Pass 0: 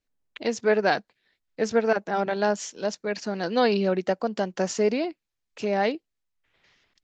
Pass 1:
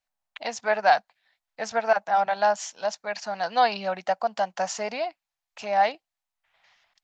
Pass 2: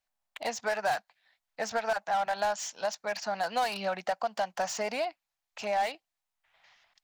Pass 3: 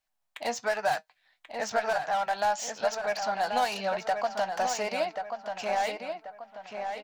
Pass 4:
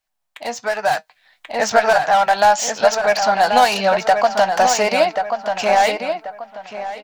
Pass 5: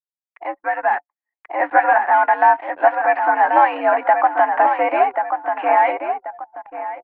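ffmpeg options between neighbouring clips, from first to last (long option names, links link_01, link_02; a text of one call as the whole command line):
ffmpeg -i in.wav -af "lowshelf=frequency=530:width_type=q:width=3:gain=-11" out.wav
ffmpeg -i in.wav -filter_complex "[0:a]acrossover=split=1100[link_01][link_02];[link_01]acompressor=threshold=-29dB:ratio=6[link_03];[link_02]volume=33dB,asoftclip=hard,volume=-33dB[link_04];[link_03][link_04]amix=inputs=2:normalize=0" out.wav
ffmpeg -i in.wav -filter_complex "[0:a]flanger=delay=6.3:depth=2.1:regen=66:speed=1:shape=sinusoidal,asplit=2[link_01][link_02];[link_02]adelay=1085,lowpass=frequency=3000:poles=1,volume=-6dB,asplit=2[link_03][link_04];[link_04]adelay=1085,lowpass=frequency=3000:poles=1,volume=0.39,asplit=2[link_05][link_06];[link_06]adelay=1085,lowpass=frequency=3000:poles=1,volume=0.39,asplit=2[link_07][link_08];[link_08]adelay=1085,lowpass=frequency=3000:poles=1,volume=0.39,asplit=2[link_09][link_10];[link_10]adelay=1085,lowpass=frequency=3000:poles=1,volume=0.39[link_11];[link_03][link_05][link_07][link_09][link_11]amix=inputs=5:normalize=0[link_12];[link_01][link_12]amix=inputs=2:normalize=0,volume=5.5dB" out.wav
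ffmpeg -i in.wav -af "dynaudnorm=framelen=280:gausssize=7:maxgain=10dB,volume=4dB" out.wav
ffmpeg -i in.wav -af "highpass=frequency=200:width_type=q:width=0.5412,highpass=frequency=200:width_type=q:width=1.307,lowpass=frequency=2100:width_type=q:width=0.5176,lowpass=frequency=2100:width_type=q:width=0.7071,lowpass=frequency=2100:width_type=q:width=1.932,afreqshift=84,anlmdn=3.98" out.wav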